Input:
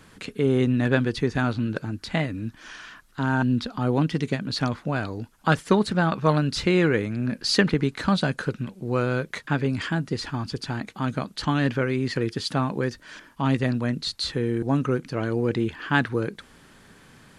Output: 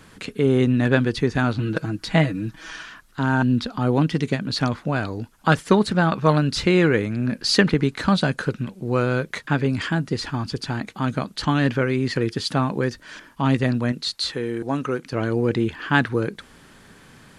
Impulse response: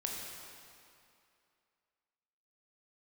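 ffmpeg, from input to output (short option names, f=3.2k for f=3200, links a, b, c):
-filter_complex "[0:a]asettb=1/sr,asplit=3[a][b][c];[a]atrim=end=1.584[d];[b]atrim=start=1.58:end=2.83,asetpts=PTS-STARTPTS,afade=t=in:d=0.004:c=qsin,afade=t=out:st=1.246:d=0.004:c=qsin,aecho=1:1:6.2:0.83,atrim=end_sample=55125[e];[c]atrim=start=2.826[f];[d][e]acrossfade=d=0.004:c1=hsin:c2=qsin[g];[g][f]acrossfade=d=0.004:c1=qsin:c2=hsin,asettb=1/sr,asplit=3[h][i][j];[h]atrim=end=13.924[k];[i]atrim=start=13.92:end=15.13,asetpts=PTS-STARTPTS,afade=t=in:d=0.004:c=qsin,afade=t=out:st=1.206:d=0.004:c=qsin,lowshelf=f=230:g=-12[l];[j]atrim=start=15.126[m];[k][l]acrossfade=d=0.004:c1=hsin:c2=qsin[n];[n][m]acrossfade=d=0.004:c1=qsin:c2=hsin,volume=3dB"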